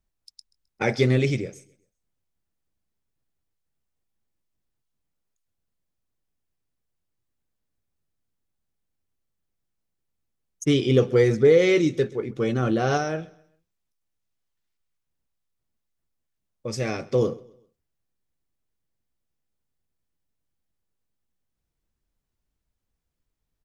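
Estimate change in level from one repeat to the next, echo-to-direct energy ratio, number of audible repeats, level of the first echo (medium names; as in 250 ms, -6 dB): -8.5 dB, -22.5 dB, 2, -23.0 dB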